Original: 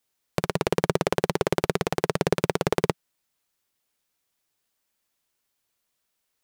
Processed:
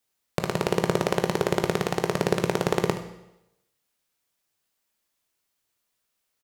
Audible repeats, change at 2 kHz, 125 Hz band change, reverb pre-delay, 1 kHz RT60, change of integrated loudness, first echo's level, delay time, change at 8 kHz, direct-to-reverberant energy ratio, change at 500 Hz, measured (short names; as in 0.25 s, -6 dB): 1, 0.0 dB, 0.0 dB, 17 ms, 0.85 s, 0.0 dB, -13.5 dB, 74 ms, 0.0 dB, 6.0 dB, 0.0 dB